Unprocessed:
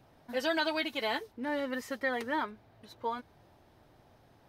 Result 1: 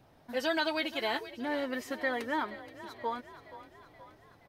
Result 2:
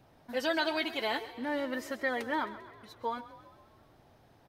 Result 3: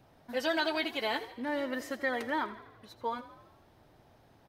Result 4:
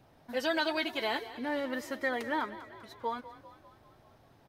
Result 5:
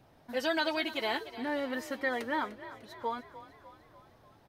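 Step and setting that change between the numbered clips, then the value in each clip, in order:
echo with shifted repeats, delay time: 475, 132, 83, 198, 299 milliseconds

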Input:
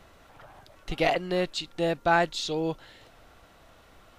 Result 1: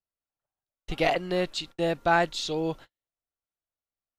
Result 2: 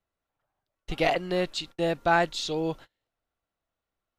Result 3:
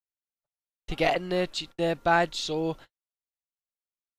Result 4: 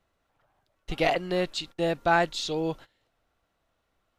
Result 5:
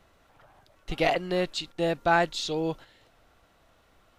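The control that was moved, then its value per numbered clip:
noise gate, range: −46, −32, −60, −20, −7 decibels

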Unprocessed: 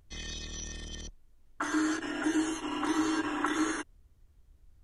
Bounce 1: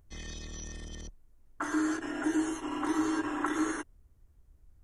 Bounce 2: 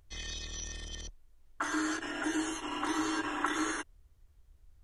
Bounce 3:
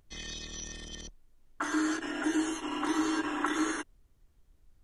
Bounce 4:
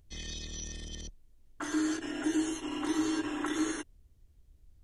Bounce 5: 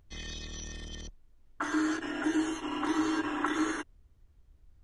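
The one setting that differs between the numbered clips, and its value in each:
parametric band, centre frequency: 3,600, 210, 66, 1,200, 13,000 Hertz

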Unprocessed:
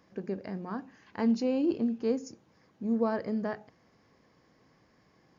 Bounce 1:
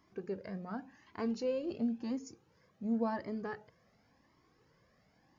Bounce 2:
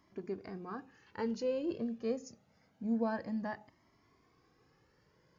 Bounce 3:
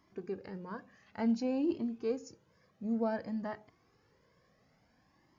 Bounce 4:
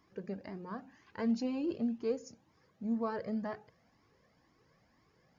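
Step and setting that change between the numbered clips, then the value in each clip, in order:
flanger whose copies keep moving one way, speed: 0.92, 0.26, 0.56, 2 Hertz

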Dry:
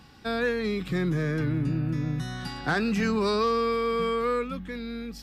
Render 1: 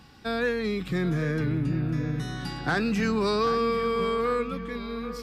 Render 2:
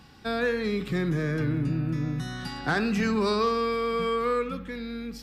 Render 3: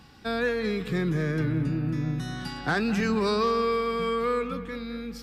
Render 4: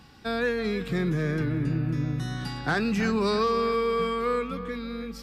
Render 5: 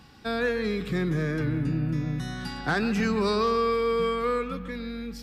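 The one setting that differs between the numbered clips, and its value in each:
delay with a low-pass on its return, delay time: 782, 68, 214, 323, 141 milliseconds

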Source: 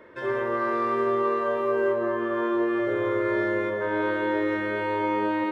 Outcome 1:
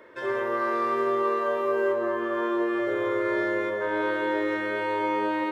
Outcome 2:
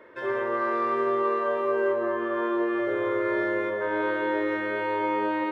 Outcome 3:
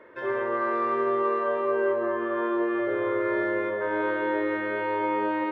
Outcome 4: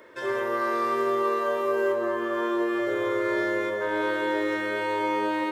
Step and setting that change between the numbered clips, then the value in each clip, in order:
bass and treble, treble: +5, −4, −13, +14 decibels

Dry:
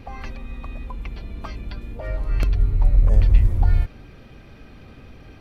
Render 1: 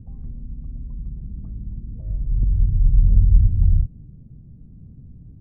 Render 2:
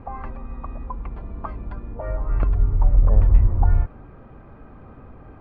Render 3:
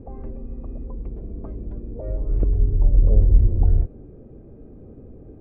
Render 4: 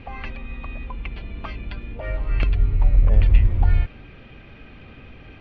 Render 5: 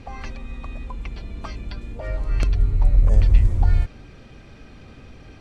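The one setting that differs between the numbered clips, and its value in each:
low-pass with resonance, frequency: 160, 1,100, 430, 2,800, 7,800 Hertz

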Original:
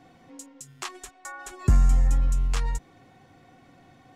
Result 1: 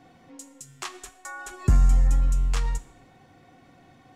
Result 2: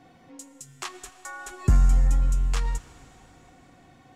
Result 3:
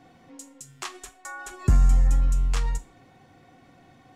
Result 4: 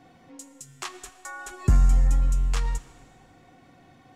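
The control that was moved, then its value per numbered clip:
four-comb reverb, RT60: 0.67, 3.8, 0.31, 1.7 seconds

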